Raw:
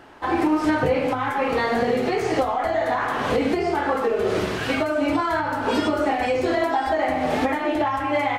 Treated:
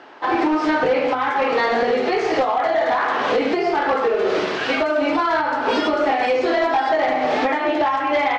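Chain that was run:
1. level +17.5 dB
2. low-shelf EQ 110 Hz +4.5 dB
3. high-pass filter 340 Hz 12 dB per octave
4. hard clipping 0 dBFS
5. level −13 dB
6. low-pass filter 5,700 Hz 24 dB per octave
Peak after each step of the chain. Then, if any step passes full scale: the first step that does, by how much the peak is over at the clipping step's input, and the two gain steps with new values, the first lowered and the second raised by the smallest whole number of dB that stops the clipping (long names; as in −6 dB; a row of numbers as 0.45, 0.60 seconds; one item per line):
+7.5, +8.0, +7.0, 0.0, −13.0, −12.0 dBFS
step 1, 7.0 dB
step 1 +10.5 dB, step 5 −6 dB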